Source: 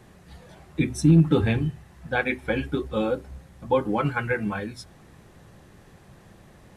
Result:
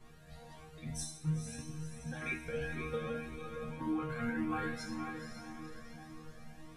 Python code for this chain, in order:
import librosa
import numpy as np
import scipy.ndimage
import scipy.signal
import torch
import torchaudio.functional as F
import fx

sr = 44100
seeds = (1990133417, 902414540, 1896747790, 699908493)

y = fx.low_shelf(x, sr, hz=89.0, db=7.0)
y = fx.over_compress(y, sr, threshold_db=-27.0, ratio=-0.5)
y = fx.resonator_bank(y, sr, root=51, chord='fifth', decay_s=0.64)
y = fx.echo_diffused(y, sr, ms=496, feedback_pct=49, wet_db=-6.0)
y = fx.comb_cascade(y, sr, direction='rising', hz=1.8)
y = y * 10.0 ** (12.0 / 20.0)